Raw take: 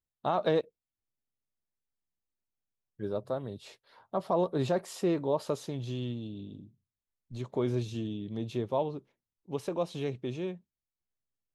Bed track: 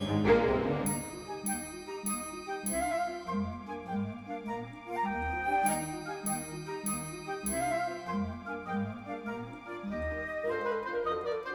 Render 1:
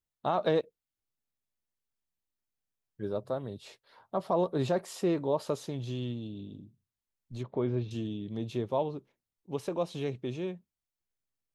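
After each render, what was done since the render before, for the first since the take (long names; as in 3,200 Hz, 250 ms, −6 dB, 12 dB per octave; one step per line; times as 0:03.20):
0:07.43–0:07.91: high-frequency loss of the air 310 metres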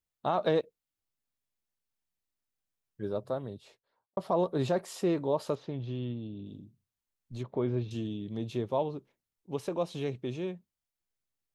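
0:03.32–0:04.17: fade out and dull
0:05.55–0:06.46: high-frequency loss of the air 260 metres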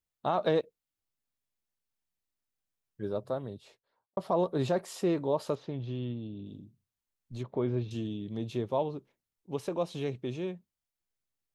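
no processing that can be heard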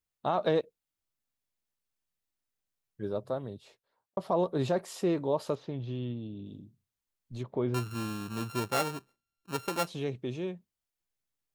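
0:07.74–0:09.87: samples sorted by size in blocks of 32 samples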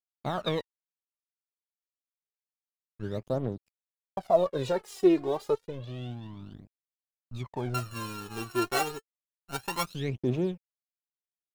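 dead-zone distortion −49.5 dBFS
phase shifter 0.29 Hz, delay 2.9 ms, feedback 72%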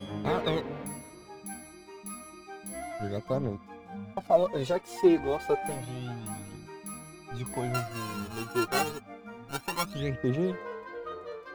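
mix in bed track −7 dB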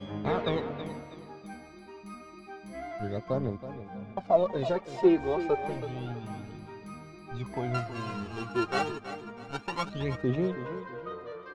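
high-frequency loss of the air 120 metres
on a send: repeating echo 324 ms, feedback 35%, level −12 dB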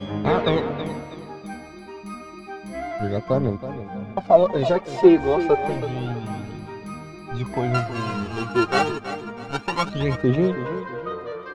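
level +9 dB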